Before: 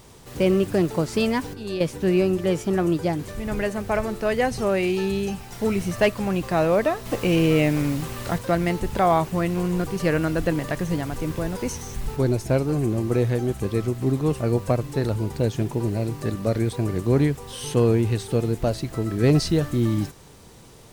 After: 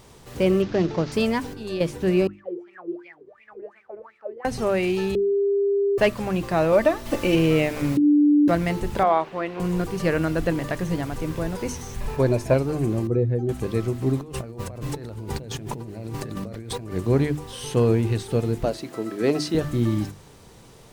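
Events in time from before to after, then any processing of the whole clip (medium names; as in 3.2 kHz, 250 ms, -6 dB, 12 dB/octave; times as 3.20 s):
0.62–1.12 s: CVSD coder 32 kbps
2.27–4.45 s: wah-wah 2.8 Hz 350–2400 Hz, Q 14
5.15–5.98 s: bleep 400 Hz -18 dBFS
6.72–7.35 s: comb 3.4 ms, depth 64%
7.97–8.48 s: bleep 294 Hz -12 dBFS
9.03–9.60 s: three-band isolator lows -20 dB, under 300 Hz, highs -22 dB, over 4.2 kHz
12.00–12.54 s: small resonant body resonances 590/1000/1700/2400 Hz, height 9 dB, ringing for 20 ms
13.07–13.49 s: spectral contrast enhancement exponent 1.5
14.21–16.92 s: compressor with a negative ratio -33 dBFS
18.65–19.55 s: Chebyshev high-pass 290 Hz
whole clip: treble shelf 6.1 kHz -4 dB; hum notches 50/100/150/200/250/300/350 Hz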